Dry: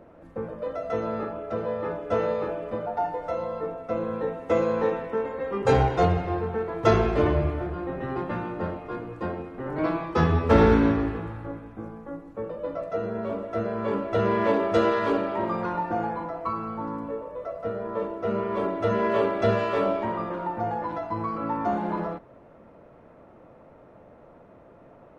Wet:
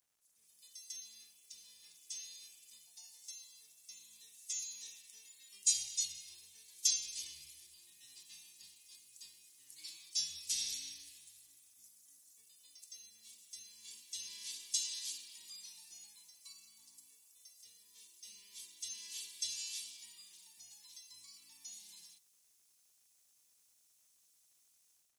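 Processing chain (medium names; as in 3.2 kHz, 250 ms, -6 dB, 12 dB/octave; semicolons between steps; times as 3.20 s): inverse Chebyshev high-pass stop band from 1.5 kHz, stop band 70 dB; level rider gain up to 14.5 dB; crackle 360 per s -76 dBFS; trim +7 dB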